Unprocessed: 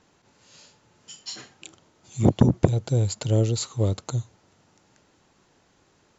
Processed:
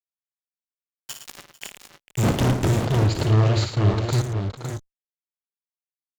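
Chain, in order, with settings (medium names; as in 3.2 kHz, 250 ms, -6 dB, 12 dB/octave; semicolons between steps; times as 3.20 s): 1.22–2.18 s: median filter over 9 samples; waveshaping leveller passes 2; fuzz box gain 26 dB, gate -34 dBFS; Chebyshev shaper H 5 -18 dB, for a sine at -10 dBFS; 2.76–4.13 s: distance through air 190 m; multi-tap echo 56/111/446/520/557/577 ms -8/-9/-19/-10/-7.5/-18 dB; trim -4 dB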